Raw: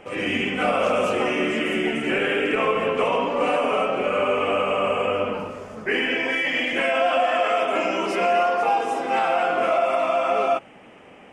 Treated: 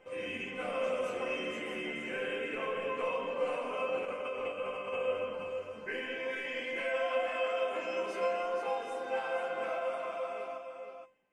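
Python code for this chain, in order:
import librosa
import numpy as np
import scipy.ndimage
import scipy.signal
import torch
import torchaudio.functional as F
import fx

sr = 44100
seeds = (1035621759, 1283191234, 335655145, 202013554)

p1 = fx.fade_out_tail(x, sr, length_s=1.48)
p2 = fx.over_compress(p1, sr, threshold_db=-24.0, ratio=-0.5, at=(3.88, 4.96))
p3 = fx.comb_fb(p2, sr, f0_hz=520.0, decay_s=0.27, harmonics='all', damping=0.0, mix_pct=90)
y = p3 + fx.echo_single(p3, sr, ms=470, db=-7.5, dry=0)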